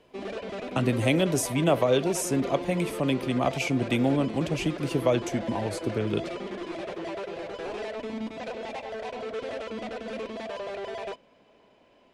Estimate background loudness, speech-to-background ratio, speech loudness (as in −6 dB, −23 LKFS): −36.0 LKFS, 9.0 dB, −27.0 LKFS